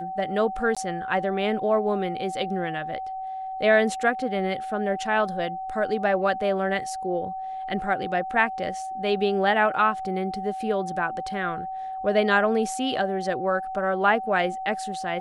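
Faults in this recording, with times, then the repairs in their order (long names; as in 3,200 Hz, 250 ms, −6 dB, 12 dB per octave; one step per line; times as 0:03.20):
whistle 760 Hz −30 dBFS
0:00.75–0:00.77: drop-out 16 ms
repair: notch filter 760 Hz, Q 30
repair the gap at 0:00.75, 16 ms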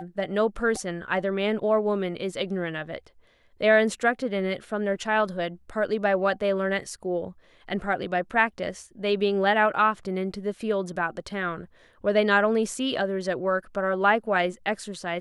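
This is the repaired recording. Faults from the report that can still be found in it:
none of them is left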